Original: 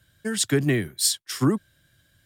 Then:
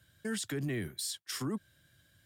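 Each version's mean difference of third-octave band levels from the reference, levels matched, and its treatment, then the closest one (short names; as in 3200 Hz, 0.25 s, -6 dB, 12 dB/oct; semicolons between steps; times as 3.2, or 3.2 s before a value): 4.0 dB: HPF 51 Hz; compressor, threshold -22 dBFS, peak gain reduction 7 dB; limiter -24 dBFS, peak gain reduction 10.5 dB; gain -3.5 dB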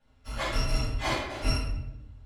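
16.5 dB: FFT order left unsorted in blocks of 256 samples; tape spacing loss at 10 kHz 28 dB; shoebox room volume 300 m³, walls mixed, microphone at 6.4 m; gain -9 dB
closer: first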